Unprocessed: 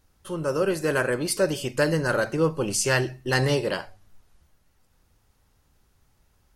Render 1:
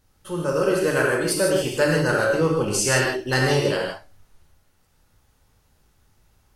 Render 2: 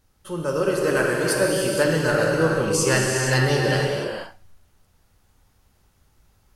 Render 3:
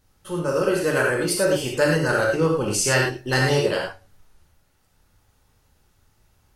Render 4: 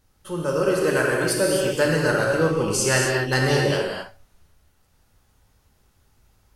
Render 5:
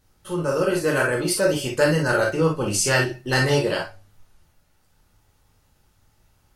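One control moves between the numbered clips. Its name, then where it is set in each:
reverb whose tail is shaped and stops, gate: 190, 520, 130, 290, 80 milliseconds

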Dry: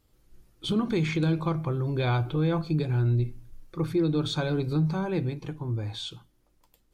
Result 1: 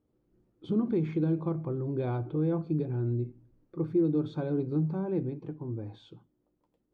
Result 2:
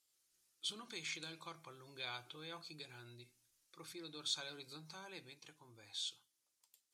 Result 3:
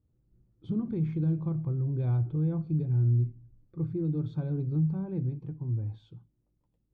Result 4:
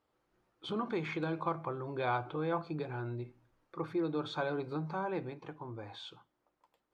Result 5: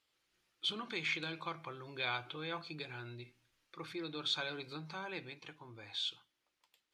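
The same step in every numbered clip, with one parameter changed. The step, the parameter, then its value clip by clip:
resonant band-pass, frequency: 300, 7,500, 120, 950, 2,800 Hertz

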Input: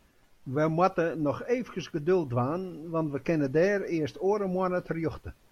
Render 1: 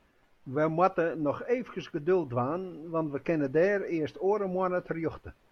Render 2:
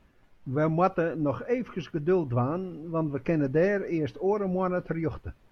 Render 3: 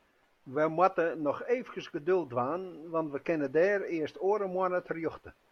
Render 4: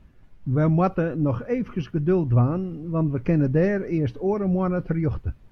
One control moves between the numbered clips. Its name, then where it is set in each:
bass and treble, bass: −5, +3, −14, +14 decibels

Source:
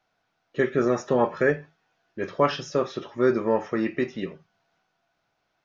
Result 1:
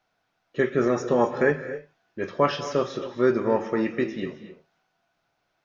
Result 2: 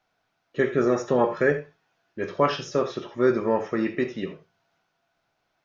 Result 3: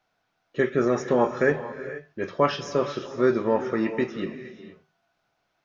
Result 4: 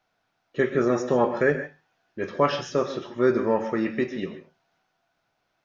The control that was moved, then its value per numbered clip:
reverb whose tail is shaped and stops, gate: 290, 100, 500, 170 milliseconds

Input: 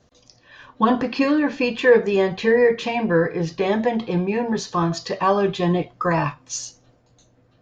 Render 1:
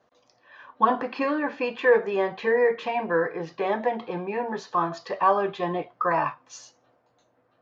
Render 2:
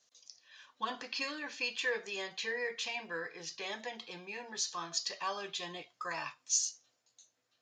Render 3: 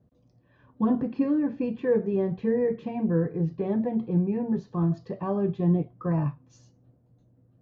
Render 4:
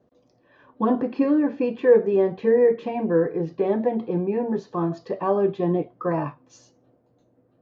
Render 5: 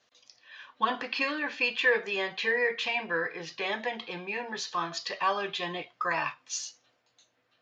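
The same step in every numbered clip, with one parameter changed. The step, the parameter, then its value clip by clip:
resonant band-pass, frequency: 1,000, 7,600, 140, 360, 2,800 Hertz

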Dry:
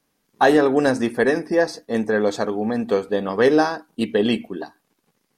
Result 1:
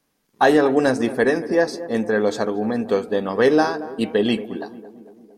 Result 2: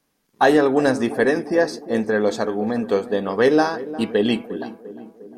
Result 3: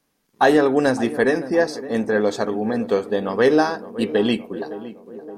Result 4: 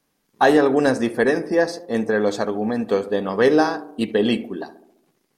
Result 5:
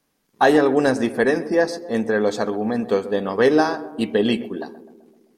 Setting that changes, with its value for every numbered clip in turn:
tape delay, delay time: 227, 352, 565, 70, 129 milliseconds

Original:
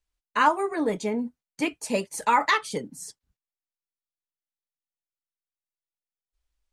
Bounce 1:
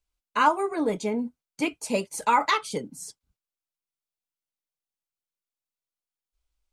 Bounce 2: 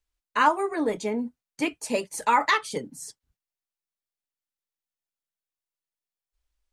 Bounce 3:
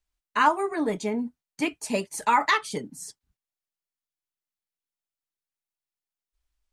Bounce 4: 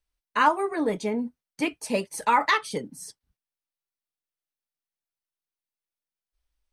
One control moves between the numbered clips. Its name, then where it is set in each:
notch filter, centre frequency: 1,800, 190, 510, 7,100 Hertz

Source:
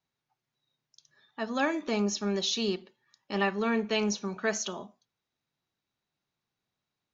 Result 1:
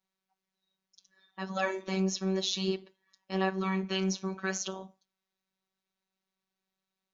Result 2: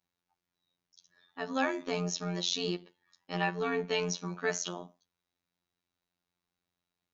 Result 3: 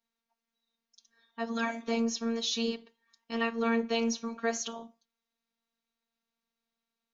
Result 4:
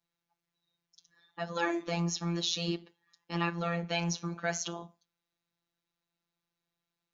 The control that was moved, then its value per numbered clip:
phases set to zero, frequency: 190, 88, 230, 170 Hertz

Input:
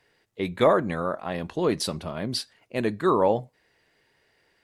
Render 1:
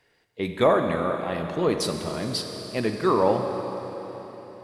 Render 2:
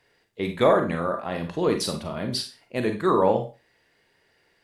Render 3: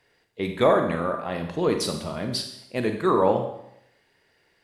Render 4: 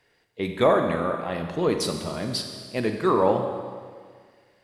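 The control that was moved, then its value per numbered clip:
four-comb reverb, RT60: 4.2, 0.31, 0.77, 1.8 seconds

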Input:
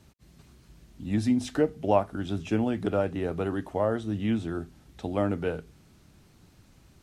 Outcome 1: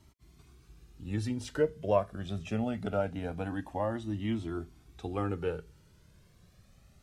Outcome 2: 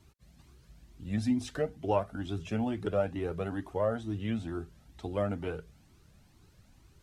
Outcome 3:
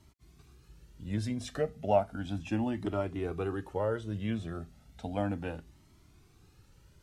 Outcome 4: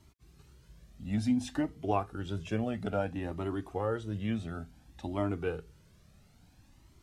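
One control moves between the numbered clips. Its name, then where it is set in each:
flanger whose copies keep moving one way, speed: 0.23, 2.2, 0.34, 0.58 Hertz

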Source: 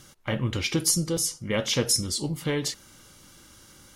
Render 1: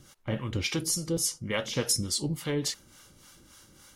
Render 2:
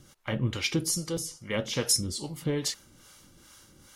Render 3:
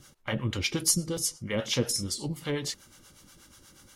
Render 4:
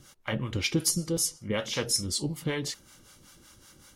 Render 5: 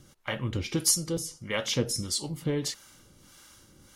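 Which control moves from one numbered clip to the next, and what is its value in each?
two-band tremolo in antiphase, speed: 3.5, 2.4, 8.3, 5.3, 1.6 Hertz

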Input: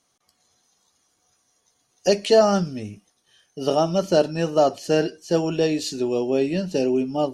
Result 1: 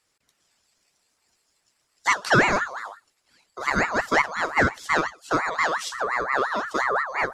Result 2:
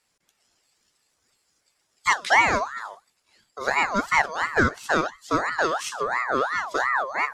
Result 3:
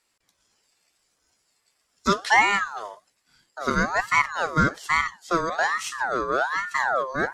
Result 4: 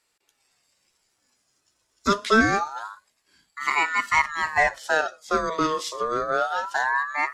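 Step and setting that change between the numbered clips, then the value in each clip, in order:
ring modulator whose carrier an LFO sweeps, at: 5.7, 2.9, 1.2, 0.26 Hertz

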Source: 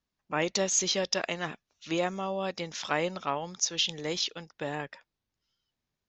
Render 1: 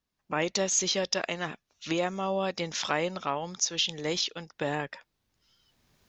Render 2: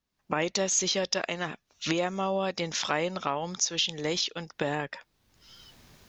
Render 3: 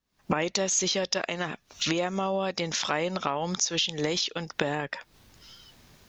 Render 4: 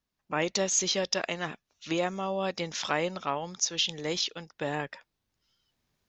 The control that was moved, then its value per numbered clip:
camcorder AGC, rising by: 14, 34, 86, 5.3 dB per second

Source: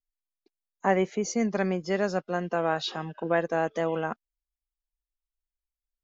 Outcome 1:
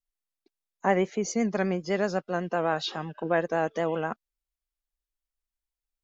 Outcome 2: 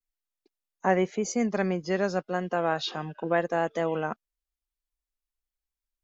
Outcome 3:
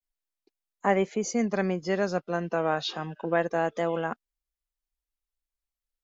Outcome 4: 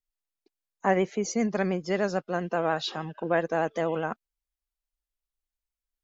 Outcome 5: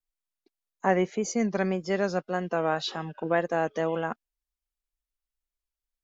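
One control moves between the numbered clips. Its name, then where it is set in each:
pitch vibrato, speed: 7.9, 0.91, 0.3, 13, 1.8 Hertz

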